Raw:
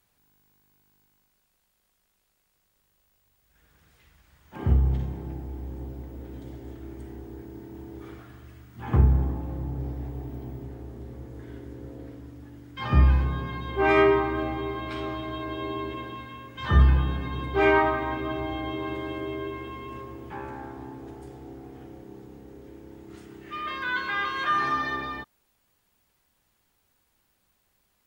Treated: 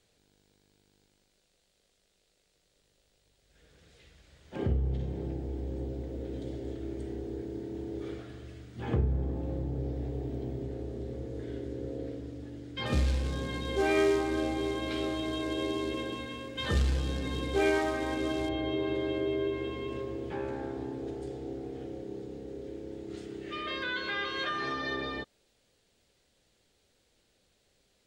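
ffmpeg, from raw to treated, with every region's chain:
ffmpeg -i in.wav -filter_complex "[0:a]asettb=1/sr,asplit=3[link_01][link_02][link_03];[link_01]atrim=end=12.864[link_04];[link_02]atrim=start=12.86:end=18.49,asetpts=PTS-STARTPTS,afade=type=in:duration=0.004:curve=qsin,afade=type=out:start_time=5.626:duration=0.004:curve=qsin,acrusher=bits=4:mode=log:mix=0:aa=0.000001,aecho=1:1:3.8:0.31,atrim=end_sample=248283[link_05];[link_03]atrim=start=18.486[link_06];[link_04][link_05]acrossfade=duration=0.004:curve1=hsin:curve2=qsin[link_07];[link_07][link_06]acrossfade=duration=0.004:curve1=qsin:curve2=hsin,aemphasis=mode=reproduction:type=50fm,acompressor=threshold=-33dB:ratio=2,equalizer=frequency=500:width_type=o:width=1:gain=10,equalizer=frequency=1000:width_type=o:width=1:gain=-9,equalizer=frequency=4000:width_type=o:width=1:gain=8,equalizer=frequency=8000:width_type=o:width=1:gain=9" out.wav

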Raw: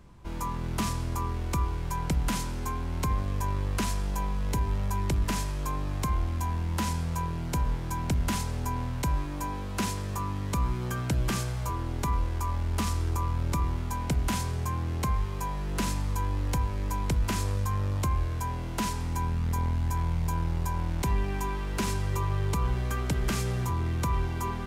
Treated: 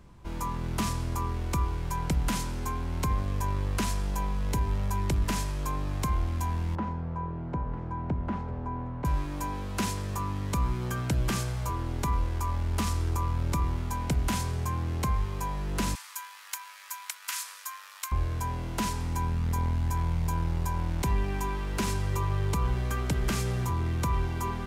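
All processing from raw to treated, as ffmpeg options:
ffmpeg -i in.wav -filter_complex "[0:a]asettb=1/sr,asplit=3[link_01][link_02][link_03];[link_01]atrim=end=6.754[link_04];[link_02]atrim=start=6.75:end=9.05,asetpts=PTS-STARTPTS,afade=type=in:duration=0.004:curve=qsin,afade=type=out:start_time=2.296:duration=0.004:curve=qsin,lowpass=1100,lowshelf=frequency=66:gain=-11,aecho=1:1:951:0.237,atrim=end_sample=101430[link_05];[link_03]atrim=start=9.046[link_06];[link_04][link_05]acrossfade=duration=0.004:curve1=hsin:curve2=qsin[link_07];[link_07][link_06]acrossfade=duration=0.004:curve1=qsin:curve2=hsin,asettb=1/sr,asplit=3[link_08][link_09][link_10];[link_08]atrim=end=15.954[link_11];[link_09]atrim=start=15.95:end=18.12,asetpts=PTS-STARTPTS,afade=type=in:duration=0.004:curve=qsin,afade=type=out:start_time=2.166:duration=0.004:curve=qsin,highpass=frequency=1200:width=0.5412,highpass=frequency=1200:width=1.3066,highshelf=frequency=9300:gain=9.5[link_12];[link_10]atrim=start=18.116[link_13];[link_11][link_12]acrossfade=duration=0.004:curve1=hsin:curve2=qsin[link_14];[link_14][link_13]acrossfade=duration=0.004:curve1=qsin:curve2=hsin" out.wav

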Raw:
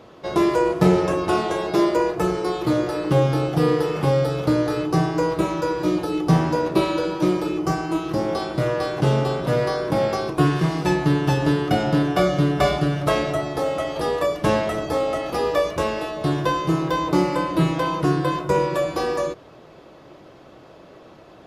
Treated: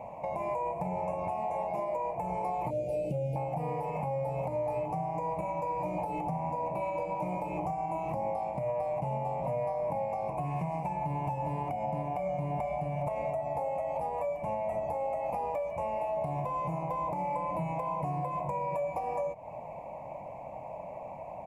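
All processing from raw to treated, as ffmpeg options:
ffmpeg -i in.wav -filter_complex "[0:a]asettb=1/sr,asplit=3[link_01][link_02][link_03];[link_01]atrim=end=2.704[link_04];[link_02]atrim=start=2.7:end=3.36,asetpts=PTS-STARTPTS,afade=type=in:duration=0.004:curve=qsin,afade=type=out:start_time=0.656:duration=0.004:curve=qsin,asuperstop=centerf=1300:order=8:qfactor=0.59,highshelf=frequency=3500:gain=10.5,acrossover=split=4200[link_05][link_06];[link_06]acompressor=threshold=-46dB:ratio=4:attack=1:release=60[link_07];[link_05][link_07]amix=inputs=2:normalize=0[link_08];[link_03]atrim=start=3.356[link_09];[link_04][link_08]acrossfade=duration=0.004:curve1=hsin:curve2=qsin[link_10];[link_10][link_09]acrossfade=duration=0.004:curve1=qsin:curve2=hsin,firequalizer=gain_entry='entry(200,0);entry(360,-17);entry(590,8);entry(920,12);entry(1400,-28);entry(2300,5);entry(3300,-26);entry(5100,-21);entry(7300,-7)':delay=0.05:min_phase=1,acompressor=threshold=-29dB:ratio=6,alimiter=level_in=0.5dB:limit=-24dB:level=0:latency=1:release=109,volume=-0.5dB" out.wav

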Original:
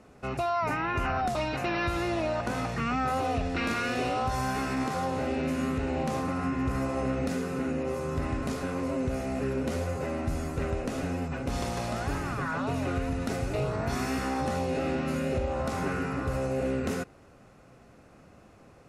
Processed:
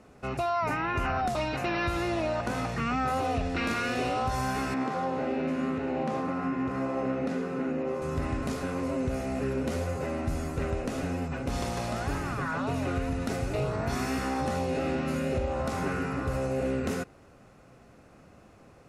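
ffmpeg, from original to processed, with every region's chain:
ffmpeg -i in.wav -filter_complex "[0:a]asettb=1/sr,asplit=3[link_01][link_02][link_03];[link_01]atrim=end=4.744[link_04];[link_02]atrim=start=4.74:end=8.02,asetpts=PTS-STARTPTS,afade=type=in:duration=0.004:curve=qsin,afade=type=out:start_time=3.276:duration=0.004:curve=qsin,highpass=170,aemphasis=mode=reproduction:type=75fm[link_05];[link_03]atrim=start=8.016[link_06];[link_04][link_05]acrossfade=duration=0.004:curve1=hsin:curve2=qsin[link_07];[link_07][link_06]acrossfade=duration=0.004:curve1=qsin:curve2=hsin" out.wav

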